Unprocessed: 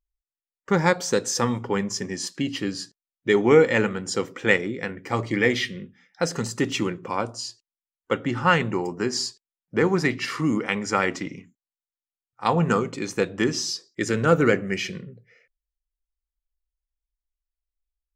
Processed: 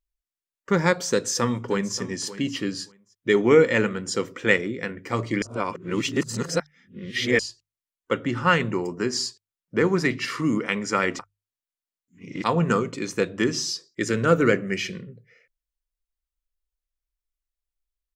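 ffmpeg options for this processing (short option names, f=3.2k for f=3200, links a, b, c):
-filter_complex "[0:a]asplit=2[a][b];[b]afade=t=in:st=1.1:d=0.01,afade=t=out:st=1.98:d=0.01,aecho=0:1:580|1160:0.16788|0.0251821[c];[a][c]amix=inputs=2:normalize=0,asplit=5[d][e][f][g][h];[d]atrim=end=5.422[i];[e]atrim=start=5.418:end=7.392,asetpts=PTS-STARTPTS,areverse[j];[f]atrim=start=7.388:end=11.192[k];[g]atrim=start=11.188:end=12.442,asetpts=PTS-STARTPTS,areverse[l];[h]atrim=start=12.438[m];[i][j]acrossfade=d=0.004:c1=hsin:c2=hsin[n];[n][k]acrossfade=d=0.004:c1=hsin:c2=hsin[o];[o][l]acrossfade=d=0.004:c1=hsin:c2=hsin[p];[p][m]acrossfade=d=0.004:c1=hsin:c2=hsin,equalizer=f=800:t=o:w=0.22:g=-9.5,bandreject=f=50:t=h:w=6,bandreject=f=100:t=h:w=6,bandreject=f=150:t=h:w=6"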